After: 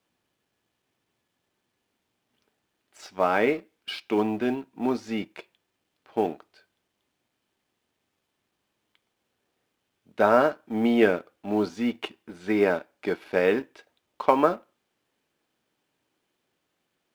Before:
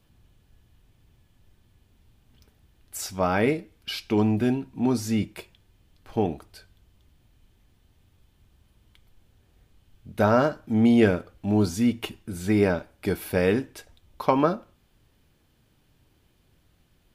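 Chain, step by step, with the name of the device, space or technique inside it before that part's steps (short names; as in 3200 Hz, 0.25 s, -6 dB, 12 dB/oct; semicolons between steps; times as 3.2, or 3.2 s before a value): phone line with mismatched companding (BPF 320–3400 Hz; G.711 law mismatch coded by A); gain +2.5 dB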